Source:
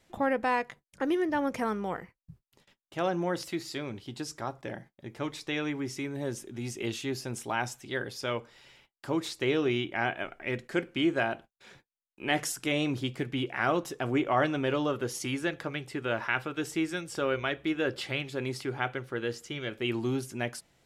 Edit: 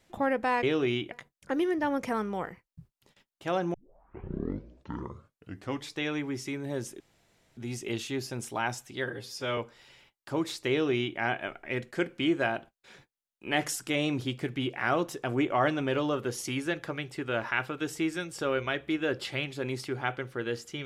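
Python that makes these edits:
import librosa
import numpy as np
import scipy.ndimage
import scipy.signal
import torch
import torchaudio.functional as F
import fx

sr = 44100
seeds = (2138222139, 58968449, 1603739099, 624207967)

y = fx.edit(x, sr, fx.tape_start(start_s=3.25, length_s=2.19),
    fx.insert_room_tone(at_s=6.51, length_s=0.57),
    fx.stretch_span(start_s=7.99, length_s=0.35, factor=1.5),
    fx.duplicate(start_s=9.46, length_s=0.49, to_s=0.63), tone=tone)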